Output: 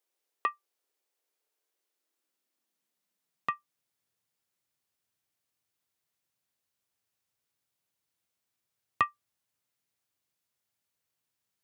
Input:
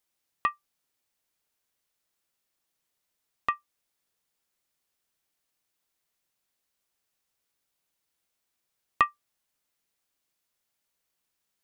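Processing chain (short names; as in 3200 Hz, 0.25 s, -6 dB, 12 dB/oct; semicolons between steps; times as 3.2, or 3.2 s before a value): high-pass sweep 410 Hz -> 100 Hz, 1.59–4.25; gain -4 dB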